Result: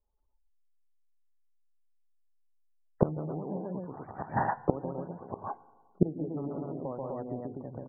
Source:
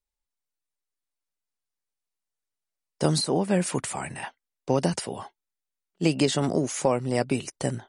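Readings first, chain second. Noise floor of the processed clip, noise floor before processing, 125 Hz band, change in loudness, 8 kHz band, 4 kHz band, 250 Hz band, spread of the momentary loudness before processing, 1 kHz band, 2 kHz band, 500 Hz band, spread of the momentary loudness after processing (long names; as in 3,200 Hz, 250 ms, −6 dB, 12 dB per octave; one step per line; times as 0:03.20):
−69 dBFS, below −85 dBFS, −6.5 dB, −8.5 dB, below −40 dB, below −40 dB, −7.0 dB, 13 LU, −3.0 dB, −10.0 dB, −8.0 dB, 11 LU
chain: low-pass filter 1,300 Hz 24 dB per octave
loudspeakers that aren't time-aligned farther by 47 metres −1 dB, 62 metres −8 dB, 86 metres −2 dB
in parallel at −6 dB: soft clipping −15 dBFS, distortion −15 dB
on the sum: gate with flip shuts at −17 dBFS, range −25 dB
feedback delay network reverb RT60 1.8 s, low-frequency decay 0.85×, high-frequency decay 0.3×, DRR 17.5 dB
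gate on every frequency bin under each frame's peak −30 dB strong
level +6.5 dB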